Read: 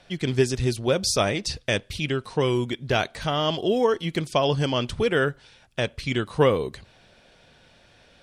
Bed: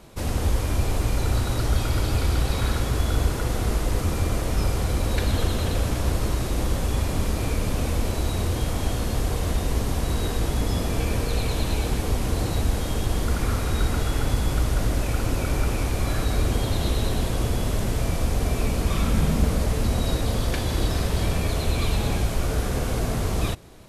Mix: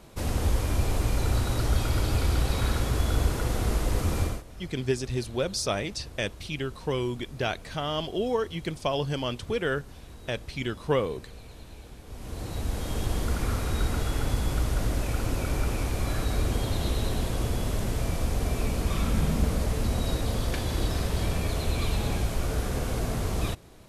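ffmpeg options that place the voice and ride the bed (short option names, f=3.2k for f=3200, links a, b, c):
-filter_complex "[0:a]adelay=4500,volume=-6dB[a];[1:a]volume=15dB,afade=t=out:st=4.22:d=0.21:silence=0.112202,afade=t=in:st=12.06:d=0.97:silence=0.133352[b];[a][b]amix=inputs=2:normalize=0"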